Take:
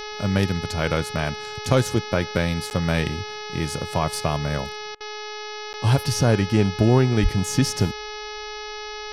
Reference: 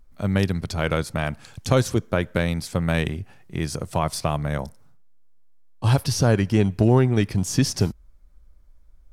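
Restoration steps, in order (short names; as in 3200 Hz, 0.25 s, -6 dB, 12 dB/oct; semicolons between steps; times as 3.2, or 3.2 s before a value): de-hum 423.1 Hz, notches 14; 7.22–7.34 HPF 140 Hz 24 dB/oct; interpolate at 2.7/5.73, 9.2 ms; interpolate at 4.95, 54 ms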